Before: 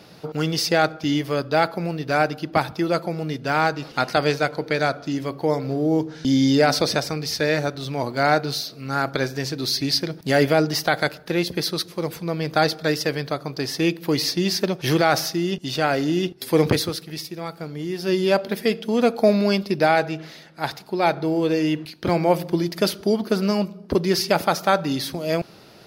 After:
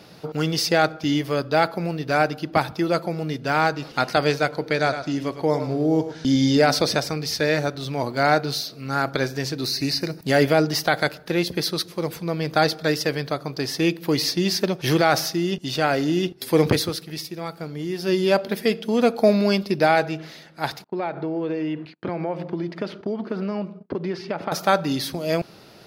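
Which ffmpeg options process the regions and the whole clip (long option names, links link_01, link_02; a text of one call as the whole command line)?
ffmpeg -i in.wav -filter_complex "[0:a]asettb=1/sr,asplit=3[link_01][link_02][link_03];[link_01]atrim=end=4.764[link_04];[link_02]atrim=start=4.76:end=6.57,asetpts=PTS-STARTPTS,afade=type=in:duration=0.004:curve=qsin,afade=type=out:start_time=1.806:duration=0.004:curve=qsin,lowpass=12000,aecho=1:1:106|212|318:0.335|0.0603|0.0109,atrim=end_sample=79821[link_05];[link_03]atrim=start=6.566[link_06];[link_04][link_05]acrossfade=duration=0.004:curve1=hsin:curve2=qsin[link_07];[link_07][link_06]acrossfade=duration=0.004:curve1=qsin:curve2=hsin,asettb=1/sr,asplit=3[link_08][link_09][link_10];[link_08]atrim=end=9.644[link_11];[link_09]atrim=start=9.64:end=10.23,asetpts=PTS-STARTPTS,afade=type=in:duration=0.004:curve=qsin,afade=type=out:start_time=0.586:duration=0.004:curve=qsin,acrossover=split=3500[link_12][link_13];[link_13]acompressor=threshold=-32dB:ratio=4:attack=1:release=60[link_14];[link_12][link_14]amix=inputs=2:normalize=0,asuperstop=centerf=3300:order=4:qfactor=4.6,highshelf=frequency=4800:gain=8[link_15];[link_10]atrim=start=10.226[link_16];[link_11][link_15]acrossfade=duration=0.004:curve1=hsin:curve2=qsin[link_17];[link_17][link_16]acrossfade=duration=0.004:curve1=qsin:curve2=hsin,asettb=1/sr,asplit=3[link_18][link_19][link_20];[link_18]atrim=end=20.844[link_21];[link_19]atrim=start=20.84:end=24.52,asetpts=PTS-STARTPTS,afade=type=in:duration=0.004:curve=qsin,afade=type=out:start_time=3.676:duration=0.004:curve=qsin,agate=range=-27dB:threshold=-41dB:ratio=16:release=100:detection=peak,acompressor=threshold=-22dB:ratio=5:attack=3.2:release=140:knee=1:detection=peak,highpass=130,lowpass=2300[link_22];[link_20]atrim=start=24.516[link_23];[link_21][link_22]acrossfade=duration=0.004:curve1=hsin:curve2=qsin[link_24];[link_24][link_23]acrossfade=duration=0.004:curve1=qsin:curve2=hsin" out.wav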